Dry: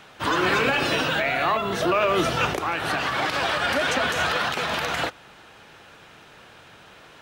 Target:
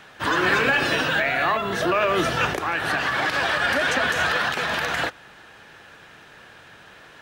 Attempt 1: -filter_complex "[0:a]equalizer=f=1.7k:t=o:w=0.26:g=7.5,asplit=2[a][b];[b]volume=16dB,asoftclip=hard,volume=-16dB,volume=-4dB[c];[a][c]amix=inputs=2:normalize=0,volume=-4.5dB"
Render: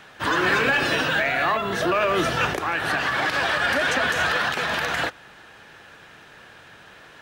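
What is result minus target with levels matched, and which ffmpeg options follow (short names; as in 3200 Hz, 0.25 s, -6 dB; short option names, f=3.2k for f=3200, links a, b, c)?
overloaded stage: distortion +31 dB
-filter_complex "[0:a]equalizer=f=1.7k:t=o:w=0.26:g=7.5,asplit=2[a][b];[b]volume=9dB,asoftclip=hard,volume=-9dB,volume=-4dB[c];[a][c]amix=inputs=2:normalize=0,volume=-4.5dB"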